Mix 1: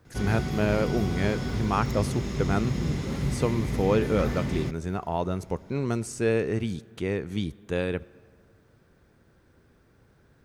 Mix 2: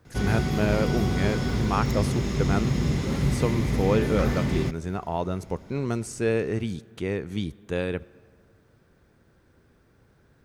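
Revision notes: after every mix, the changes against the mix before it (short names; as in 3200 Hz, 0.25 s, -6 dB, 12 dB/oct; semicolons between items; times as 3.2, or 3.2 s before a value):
background +4.0 dB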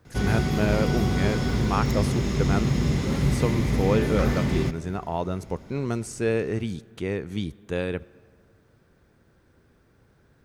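background: send +11.5 dB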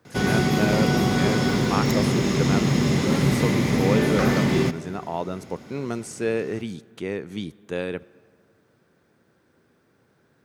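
background +6.5 dB; master: add HPF 160 Hz 12 dB/oct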